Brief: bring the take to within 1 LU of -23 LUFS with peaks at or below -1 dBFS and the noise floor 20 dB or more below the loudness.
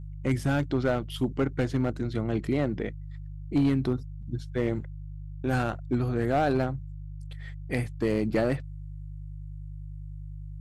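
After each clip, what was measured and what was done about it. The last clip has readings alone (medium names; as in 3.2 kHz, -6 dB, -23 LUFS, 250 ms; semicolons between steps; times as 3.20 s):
clipped samples 0.8%; clipping level -17.5 dBFS; hum 50 Hz; highest harmonic 150 Hz; hum level -37 dBFS; loudness -28.5 LUFS; peak level -17.5 dBFS; loudness target -23.0 LUFS
-> clip repair -17.5 dBFS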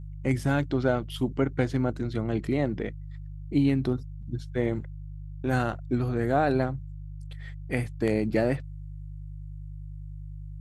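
clipped samples 0.0%; hum 50 Hz; highest harmonic 150 Hz; hum level -36 dBFS
-> de-hum 50 Hz, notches 3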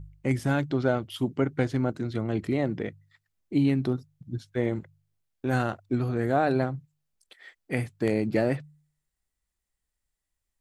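hum not found; loudness -28.5 LUFS; peak level -11.0 dBFS; loudness target -23.0 LUFS
-> trim +5.5 dB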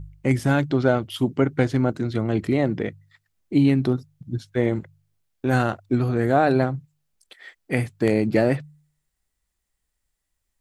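loudness -23.0 LUFS; peak level -5.5 dBFS; noise floor -78 dBFS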